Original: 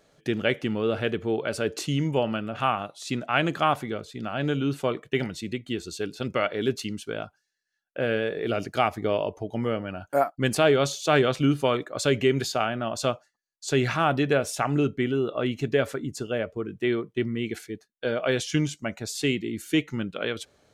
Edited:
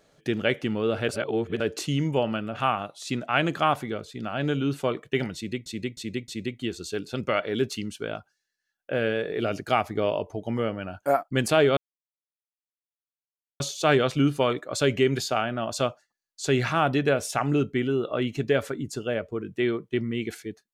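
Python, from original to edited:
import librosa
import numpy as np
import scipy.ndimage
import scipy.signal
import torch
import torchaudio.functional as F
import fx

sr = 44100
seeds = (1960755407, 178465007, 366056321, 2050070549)

y = fx.edit(x, sr, fx.reverse_span(start_s=1.09, length_s=0.51),
    fx.repeat(start_s=5.35, length_s=0.31, count=4),
    fx.insert_silence(at_s=10.84, length_s=1.83), tone=tone)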